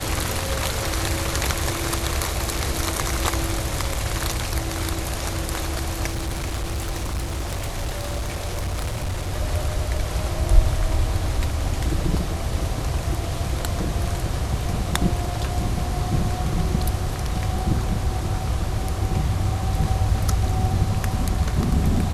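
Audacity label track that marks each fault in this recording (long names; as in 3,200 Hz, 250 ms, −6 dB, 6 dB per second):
6.080000	9.310000	clipping −22 dBFS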